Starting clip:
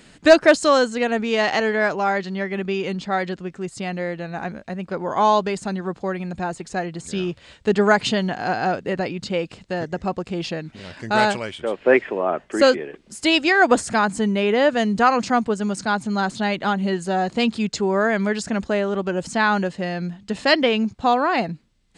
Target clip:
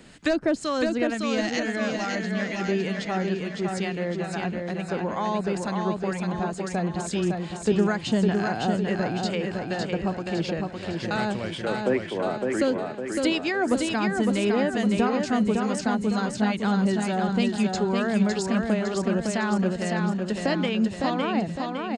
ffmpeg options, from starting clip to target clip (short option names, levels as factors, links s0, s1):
-filter_complex "[0:a]asettb=1/sr,asplit=3[s0][s1][s2];[s0]atrim=end=1.144[s3];[s1]atrim=start=1.14:end=2.61,asetpts=PTS-STARTPTS,afade=t=in:d=0.004:c=qsin,afade=t=out:st=1.466:d=0.004:c=qsin,equalizer=f=400:t=o:w=0.67:g=-9,equalizer=f=1000:t=o:w=0.67:g=-9,equalizer=f=6300:t=o:w=0.67:g=9[s4];[s2]atrim=start=2.606[s5];[s3][s4]acrossfade=d=0.004:c1=hsin:c2=qsin[s6];[s6][s5]acrossfade=d=0.004:c1=qsin:c2=hsin,acrossover=split=1100[s7][s8];[s7]aeval=exprs='val(0)*(1-0.5/2+0.5/2*cos(2*PI*2.2*n/s))':c=same[s9];[s8]aeval=exprs='val(0)*(1-0.5/2-0.5/2*cos(2*PI*2.2*n/s))':c=same[s10];[s9][s10]amix=inputs=2:normalize=0,acrossover=split=300[s11][s12];[s12]acompressor=threshold=0.0282:ratio=3[s13];[s11][s13]amix=inputs=2:normalize=0,aecho=1:1:558|1116|1674|2232|2790|3348|3906:0.631|0.322|0.164|0.0837|0.0427|0.0218|0.0111,volume=1.19"